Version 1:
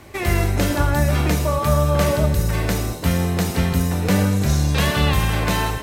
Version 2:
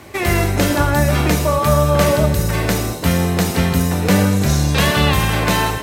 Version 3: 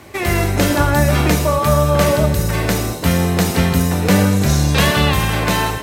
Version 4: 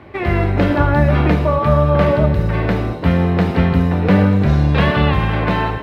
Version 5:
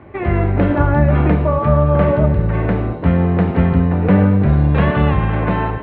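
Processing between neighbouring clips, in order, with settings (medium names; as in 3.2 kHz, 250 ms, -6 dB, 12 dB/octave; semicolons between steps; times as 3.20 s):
high-pass 99 Hz 6 dB/octave; trim +5 dB
level rider; trim -1 dB
distance through air 410 m; trim +1.5 dB
distance through air 500 m; trim +1 dB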